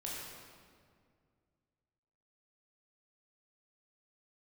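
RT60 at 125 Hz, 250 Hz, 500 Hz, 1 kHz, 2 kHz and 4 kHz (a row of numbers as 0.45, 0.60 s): 2.8, 2.6, 2.2, 1.9, 1.6, 1.4 s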